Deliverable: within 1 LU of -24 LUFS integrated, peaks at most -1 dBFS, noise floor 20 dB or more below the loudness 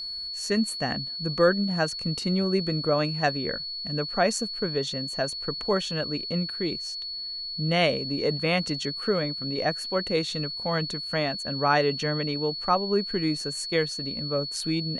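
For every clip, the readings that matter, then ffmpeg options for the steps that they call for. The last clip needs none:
steady tone 4.4 kHz; tone level -32 dBFS; loudness -26.5 LUFS; peak level -8.5 dBFS; loudness target -24.0 LUFS
-> -af "bandreject=f=4400:w=30"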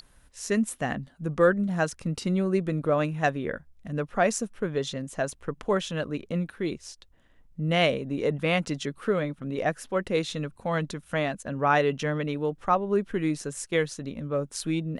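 steady tone not found; loudness -28.0 LUFS; peak level -9.0 dBFS; loudness target -24.0 LUFS
-> -af "volume=1.58"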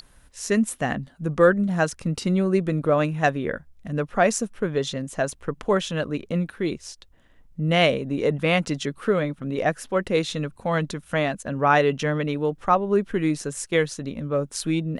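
loudness -24.0 LUFS; peak level -5.0 dBFS; noise floor -55 dBFS

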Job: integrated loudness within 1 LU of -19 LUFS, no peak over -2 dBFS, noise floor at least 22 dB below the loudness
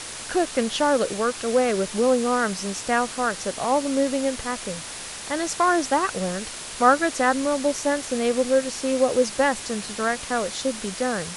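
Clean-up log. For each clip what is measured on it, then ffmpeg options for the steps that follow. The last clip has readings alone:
noise floor -36 dBFS; noise floor target -46 dBFS; loudness -23.5 LUFS; peak level -4.5 dBFS; loudness target -19.0 LUFS
-> -af "afftdn=nr=10:nf=-36"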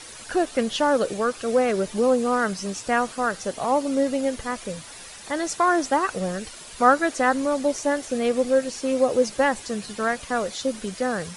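noise floor -42 dBFS; noise floor target -46 dBFS
-> -af "afftdn=nr=6:nf=-42"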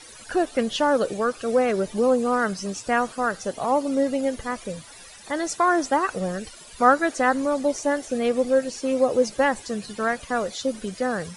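noise floor -45 dBFS; noise floor target -46 dBFS
-> -af "afftdn=nr=6:nf=-45"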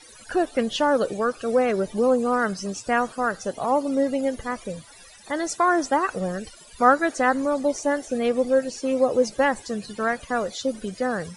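noise floor -48 dBFS; loudness -23.5 LUFS; peak level -5.0 dBFS; loudness target -19.0 LUFS
-> -af "volume=1.68,alimiter=limit=0.794:level=0:latency=1"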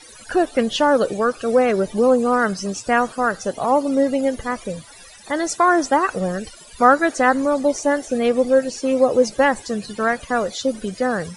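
loudness -19.5 LUFS; peak level -2.0 dBFS; noise floor -43 dBFS

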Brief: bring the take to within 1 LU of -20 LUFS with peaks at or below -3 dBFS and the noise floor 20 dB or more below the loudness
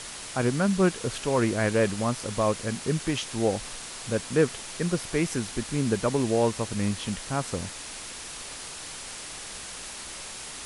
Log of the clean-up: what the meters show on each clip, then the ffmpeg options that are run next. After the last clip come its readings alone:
noise floor -40 dBFS; noise floor target -49 dBFS; loudness -28.5 LUFS; peak level -9.5 dBFS; loudness target -20.0 LUFS
-> -af "afftdn=nr=9:nf=-40"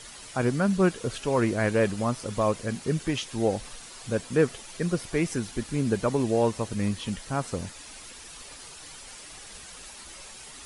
noise floor -45 dBFS; noise floor target -48 dBFS
-> -af "afftdn=nr=6:nf=-45"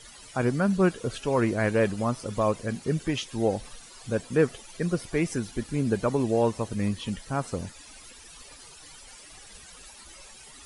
noise floor -49 dBFS; loudness -27.5 LUFS; peak level -9.5 dBFS; loudness target -20.0 LUFS
-> -af "volume=2.37,alimiter=limit=0.708:level=0:latency=1"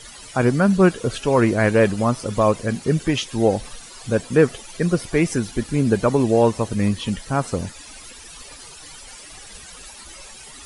loudness -20.0 LUFS; peak level -3.0 dBFS; noise floor -41 dBFS

